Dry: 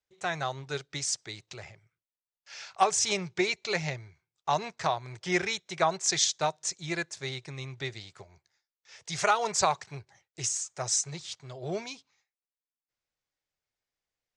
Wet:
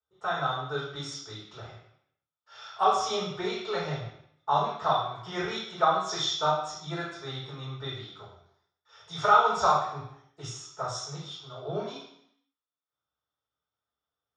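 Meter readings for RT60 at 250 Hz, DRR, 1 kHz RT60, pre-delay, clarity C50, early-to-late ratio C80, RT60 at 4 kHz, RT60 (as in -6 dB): 0.80 s, -8.0 dB, 0.70 s, 3 ms, 2.5 dB, 6.5 dB, 0.70 s, 0.70 s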